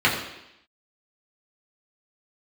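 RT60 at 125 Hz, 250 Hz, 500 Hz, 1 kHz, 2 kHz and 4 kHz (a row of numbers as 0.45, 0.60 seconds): 0.70, 0.85, 0.80, 0.85, 0.90, 0.90 seconds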